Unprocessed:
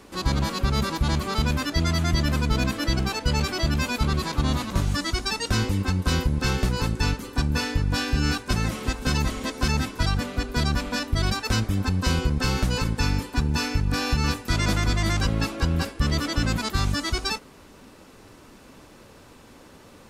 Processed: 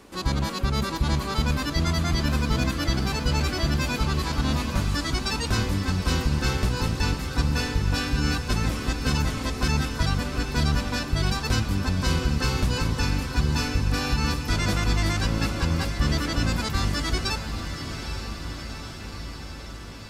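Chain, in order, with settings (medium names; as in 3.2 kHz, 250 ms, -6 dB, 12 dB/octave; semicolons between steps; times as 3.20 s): echo that smears into a reverb 833 ms, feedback 69%, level -8.5 dB; trim -1.5 dB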